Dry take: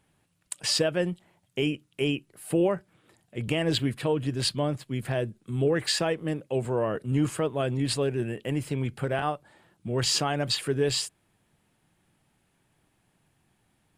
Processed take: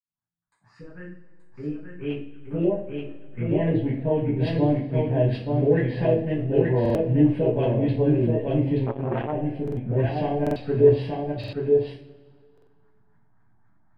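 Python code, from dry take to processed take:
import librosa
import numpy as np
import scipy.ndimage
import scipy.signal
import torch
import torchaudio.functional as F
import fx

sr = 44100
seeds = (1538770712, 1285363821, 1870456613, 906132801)

p1 = fx.fade_in_head(x, sr, length_s=4.18)
p2 = fx.dynamic_eq(p1, sr, hz=5100.0, q=0.88, threshold_db=-39.0, ratio=4.0, max_db=-4)
p3 = fx.backlash(p2, sr, play_db=-24.0)
p4 = p2 + (p3 * librosa.db_to_amplitude(-4.0))
p5 = fx.env_phaser(p4, sr, low_hz=480.0, high_hz=1300.0, full_db=-24.0)
p6 = fx.filter_lfo_lowpass(p5, sr, shape='saw_up', hz=3.8, low_hz=460.0, high_hz=2200.0, q=1.3)
p7 = p6 + fx.echo_single(p6, sr, ms=878, db=-3.5, dry=0)
p8 = fx.rev_double_slope(p7, sr, seeds[0], early_s=0.41, late_s=1.9, knee_db=-20, drr_db=-9.0)
p9 = fx.buffer_glitch(p8, sr, at_s=(6.81, 9.63, 10.42, 11.39, 12.53), block=2048, repeats=2)
p10 = fx.transformer_sat(p9, sr, knee_hz=630.0, at=(8.86, 9.33))
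y = p10 * librosa.db_to_amplitude(-7.0)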